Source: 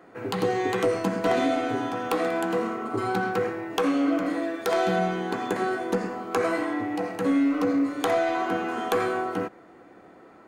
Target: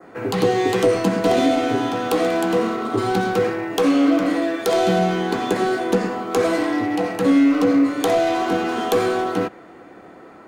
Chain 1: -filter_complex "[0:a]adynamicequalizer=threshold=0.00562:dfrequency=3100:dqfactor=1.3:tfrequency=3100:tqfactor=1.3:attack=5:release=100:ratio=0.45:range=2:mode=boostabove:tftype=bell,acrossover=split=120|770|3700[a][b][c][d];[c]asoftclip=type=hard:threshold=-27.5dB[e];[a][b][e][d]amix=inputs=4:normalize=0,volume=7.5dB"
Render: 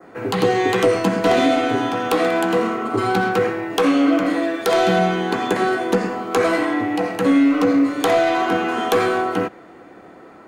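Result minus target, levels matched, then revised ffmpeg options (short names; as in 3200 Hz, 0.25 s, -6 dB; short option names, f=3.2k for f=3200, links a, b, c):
hard clip: distortion -9 dB
-filter_complex "[0:a]adynamicequalizer=threshold=0.00562:dfrequency=3100:dqfactor=1.3:tfrequency=3100:tqfactor=1.3:attack=5:release=100:ratio=0.45:range=2:mode=boostabove:tftype=bell,acrossover=split=120|770|3700[a][b][c][d];[c]asoftclip=type=hard:threshold=-36.5dB[e];[a][b][e][d]amix=inputs=4:normalize=0,volume=7.5dB"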